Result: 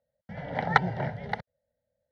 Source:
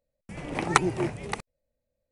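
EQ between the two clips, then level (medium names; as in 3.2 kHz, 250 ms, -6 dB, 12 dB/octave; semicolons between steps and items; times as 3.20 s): band-pass 100–2500 Hz; static phaser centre 1.7 kHz, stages 8; +4.5 dB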